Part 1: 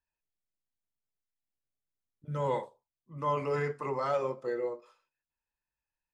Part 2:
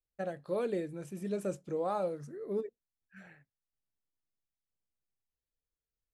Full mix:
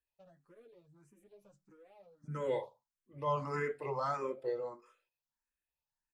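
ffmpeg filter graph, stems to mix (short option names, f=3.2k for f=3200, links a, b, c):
-filter_complex "[0:a]volume=-1dB,asplit=2[a][b];[1:a]acompressor=threshold=-37dB:ratio=6,asoftclip=type=hard:threshold=-38.5dB,asplit=2[c][d];[d]adelay=8.3,afreqshift=-0.38[e];[c][e]amix=inputs=2:normalize=1,volume=-13.5dB[f];[b]apad=whole_len=271033[g];[f][g]sidechaincompress=threshold=-50dB:ratio=8:attack=16:release=928[h];[a][h]amix=inputs=2:normalize=0,asplit=2[i][j];[j]afreqshift=1.6[k];[i][k]amix=inputs=2:normalize=1"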